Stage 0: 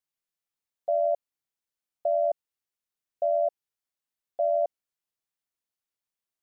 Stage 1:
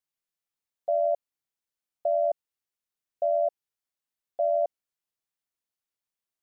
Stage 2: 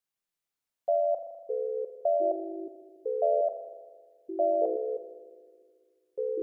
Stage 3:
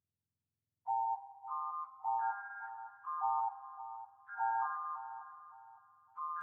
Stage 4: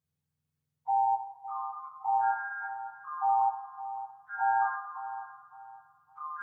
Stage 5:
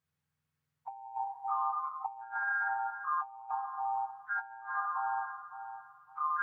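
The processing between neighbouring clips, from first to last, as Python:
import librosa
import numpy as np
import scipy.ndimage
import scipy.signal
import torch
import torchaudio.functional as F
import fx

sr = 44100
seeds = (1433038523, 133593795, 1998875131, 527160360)

y1 = x
y2 = fx.rev_spring(y1, sr, rt60_s=1.5, pass_ms=(40,), chirp_ms=65, drr_db=6.0)
y2 = fx.echo_pitch(y2, sr, ms=317, semitones=-5, count=2, db_per_echo=-6.0)
y3 = fx.octave_mirror(y2, sr, pivot_hz=730.0)
y3 = fx.echo_filtered(y3, sr, ms=561, feedback_pct=43, hz=860.0, wet_db=-9.5)
y3 = y3 * 10.0 ** (-8.0 / 20.0)
y4 = fx.rev_fdn(y3, sr, rt60_s=0.46, lf_ratio=1.2, hf_ratio=0.55, size_ms=37.0, drr_db=-3.5)
y5 = fx.peak_eq(y4, sr, hz=1500.0, db=10.5, octaves=2.2)
y5 = fx.over_compress(y5, sr, threshold_db=-28.0, ratio=-0.5)
y5 = y5 * 10.0 ** (-6.5 / 20.0)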